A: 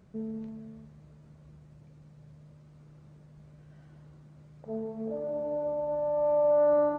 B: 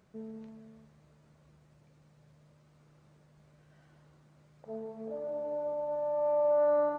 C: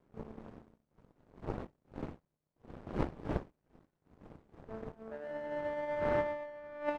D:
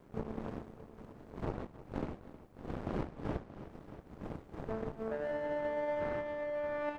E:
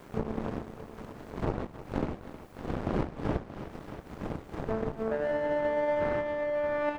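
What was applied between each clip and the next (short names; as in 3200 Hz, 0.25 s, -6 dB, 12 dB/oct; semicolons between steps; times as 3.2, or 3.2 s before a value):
low shelf 350 Hz -11.5 dB
wind noise 370 Hz -43 dBFS; negative-ratio compressor -30 dBFS, ratio -0.5; power-law curve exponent 2; gain +4.5 dB
compressor 10:1, threshold -44 dBFS, peak gain reduction 18.5 dB; multi-head echo 0.315 s, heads first and second, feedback 41%, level -15.5 dB; gain +11 dB
mismatched tape noise reduction encoder only; gain +7 dB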